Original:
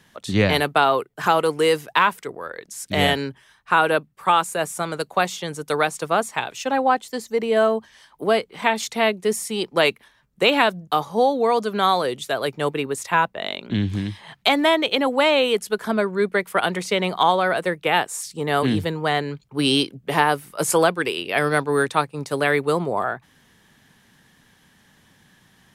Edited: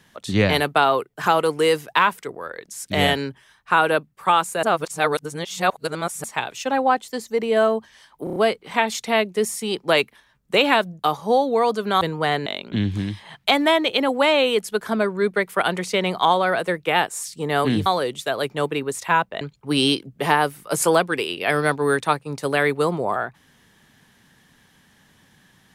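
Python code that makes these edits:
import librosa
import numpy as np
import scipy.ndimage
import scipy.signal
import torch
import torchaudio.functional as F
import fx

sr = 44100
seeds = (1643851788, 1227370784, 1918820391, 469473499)

y = fx.edit(x, sr, fx.reverse_span(start_s=4.63, length_s=1.61),
    fx.stutter(start_s=8.24, slice_s=0.03, count=5),
    fx.swap(start_s=11.89, length_s=1.55, other_s=18.84, other_length_s=0.45), tone=tone)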